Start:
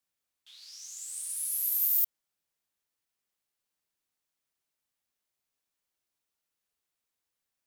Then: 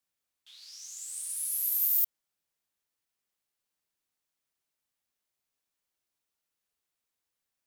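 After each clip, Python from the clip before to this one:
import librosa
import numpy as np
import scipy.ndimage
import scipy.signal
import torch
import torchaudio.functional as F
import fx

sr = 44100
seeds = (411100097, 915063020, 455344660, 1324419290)

y = x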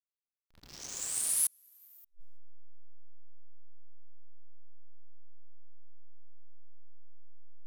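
y = fx.backlash(x, sr, play_db=-37.5)
y = fx.gate_flip(y, sr, shuts_db=-24.0, range_db=-38)
y = F.gain(torch.from_numpy(y), 8.0).numpy()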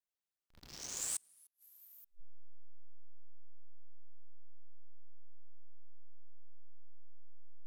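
y = fx.vibrato(x, sr, rate_hz=0.83, depth_cents=18.0)
y = fx.gate_flip(y, sr, shuts_db=-22.0, range_db=-34)
y = F.gain(torch.from_numpy(y), -1.5).numpy()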